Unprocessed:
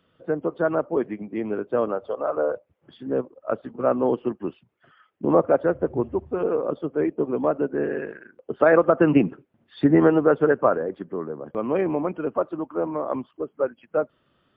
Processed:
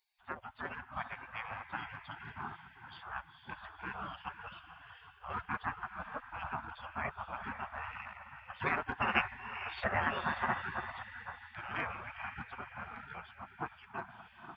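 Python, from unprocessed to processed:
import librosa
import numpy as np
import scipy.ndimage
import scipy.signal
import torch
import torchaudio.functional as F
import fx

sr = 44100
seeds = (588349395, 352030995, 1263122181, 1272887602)

y = fx.echo_diffused(x, sr, ms=478, feedback_pct=48, wet_db=-9)
y = fx.spec_gate(y, sr, threshold_db=-25, keep='weak')
y = y * librosa.db_to_amplitude(3.5)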